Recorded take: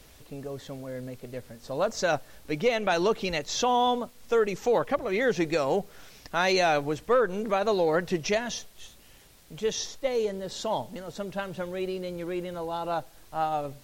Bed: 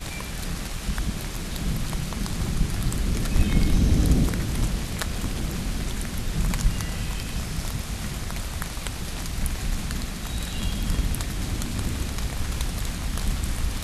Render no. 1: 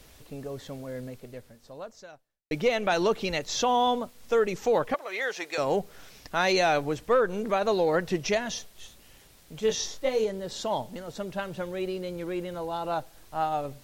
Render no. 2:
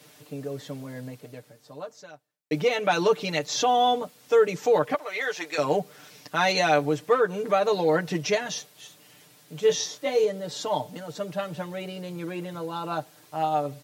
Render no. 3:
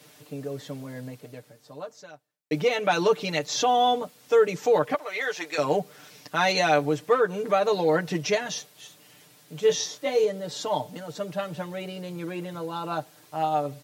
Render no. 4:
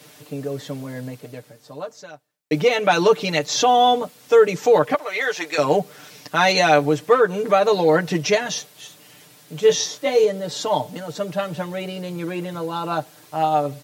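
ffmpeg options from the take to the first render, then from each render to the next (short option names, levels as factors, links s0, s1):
-filter_complex "[0:a]asettb=1/sr,asplit=3[s0][s1][s2];[s0]atrim=end=4.944[s3];[s1]atrim=start=4.94:end=5.58,asetpts=PTS-STARTPTS,afade=t=in:d=0.004:c=qsin,afade=t=out:st=0.636:d=0.004:c=qsin,highpass=770[s4];[s2]atrim=start=5.576[s5];[s3][s4]acrossfade=d=0.004:c1=hsin:c2=qsin[s6];[s6][s5]acrossfade=d=0.004:c1=qsin:c2=hsin,asettb=1/sr,asplit=3[s7][s8][s9];[s7]atrim=end=9.604[s10];[s8]atrim=start=9.6:end=10.24,asetpts=PTS-STARTPTS,afade=t=in:d=0.004:c=qsin,afade=t=out:st=0.636:d=0.004:c=qsin,asplit=2[s11][s12];[s12]adelay=23,volume=0.631[s13];[s11][s13]amix=inputs=2:normalize=0,atrim=end_sample=28224[s14];[s9]atrim=start=10.236[s15];[s10][s14]acrossfade=d=0.004:c1=hsin:c2=qsin[s16];[s16][s15]acrossfade=d=0.004:c1=qsin:c2=hsin,asplit=2[s17][s18];[s17]atrim=end=2.51,asetpts=PTS-STARTPTS,afade=t=out:st=1.01:d=1.5:c=qua[s19];[s18]atrim=start=2.51,asetpts=PTS-STARTPTS,afade=t=in:d=0.004:c=hsin[s20];[s19][s20]concat=n=2:v=0:a=1"
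-af "highpass=f=120:w=0.5412,highpass=f=120:w=1.3066,aecho=1:1:6.7:0.82"
-af anull
-af "volume=2"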